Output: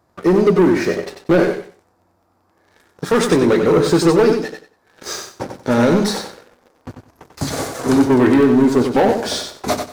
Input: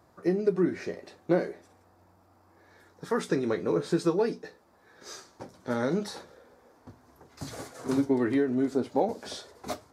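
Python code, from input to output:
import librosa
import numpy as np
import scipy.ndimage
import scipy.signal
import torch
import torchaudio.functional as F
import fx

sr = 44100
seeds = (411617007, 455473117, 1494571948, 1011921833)

p1 = fx.leveller(x, sr, passes=3)
p2 = p1 + fx.echo_feedback(p1, sr, ms=93, feedback_pct=21, wet_db=-6.5, dry=0)
y = p2 * 10.0 ** (5.5 / 20.0)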